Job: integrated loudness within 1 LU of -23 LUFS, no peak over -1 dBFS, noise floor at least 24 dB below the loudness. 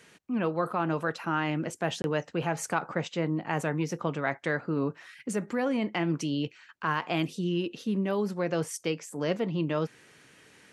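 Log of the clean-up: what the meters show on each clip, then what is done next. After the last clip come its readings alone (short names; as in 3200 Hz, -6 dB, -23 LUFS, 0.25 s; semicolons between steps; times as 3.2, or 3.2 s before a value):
dropouts 1; longest dropout 21 ms; loudness -30.5 LUFS; peak -14.0 dBFS; loudness target -23.0 LUFS
-> interpolate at 2.02, 21 ms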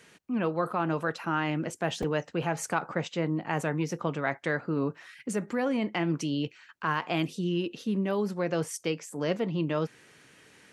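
dropouts 0; loudness -30.5 LUFS; peak -14.0 dBFS; loudness target -23.0 LUFS
-> gain +7.5 dB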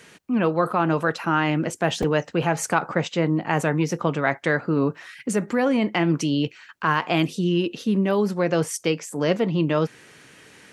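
loudness -23.0 LUFS; peak -6.5 dBFS; noise floor -50 dBFS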